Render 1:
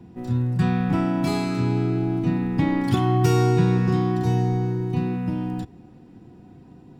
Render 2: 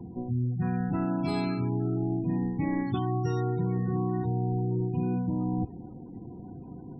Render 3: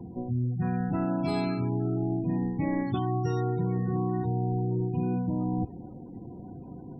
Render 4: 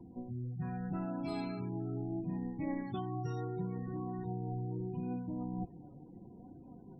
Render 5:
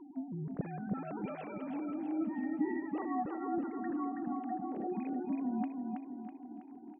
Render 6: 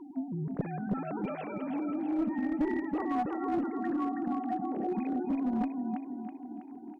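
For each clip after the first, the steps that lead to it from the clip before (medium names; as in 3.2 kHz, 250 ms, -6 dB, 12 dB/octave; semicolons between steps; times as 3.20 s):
spectral gate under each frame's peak -25 dB strong; reverse; compression 12:1, threshold -29 dBFS, peak gain reduction 16 dB; reverse; trim +4 dB
peaking EQ 590 Hz +8.5 dB 0.3 oct
flange 0.76 Hz, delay 3.1 ms, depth 4.2 ms, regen +48%; trim -6 dB
formants replaced by sine waves; feedback delay 325 ms, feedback 51%, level -4.5 dB
one-sided clip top -31.5 dBFS; trim +5 dB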